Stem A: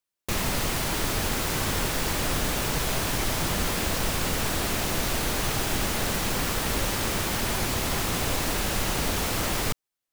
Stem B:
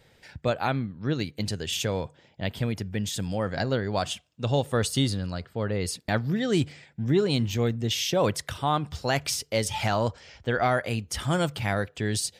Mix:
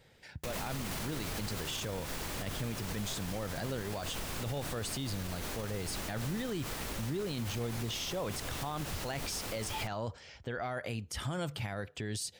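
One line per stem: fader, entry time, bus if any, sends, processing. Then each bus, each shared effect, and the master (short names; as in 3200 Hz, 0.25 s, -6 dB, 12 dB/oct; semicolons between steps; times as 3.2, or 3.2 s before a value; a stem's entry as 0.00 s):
-1.5 dB, 0.15 s, no send, auto duck -10 dB, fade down 1.90 s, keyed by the second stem
-3.5 dB, 0.00 s, no send, dry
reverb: off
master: limiter -28 dBFS, peak gain reduction 13 dB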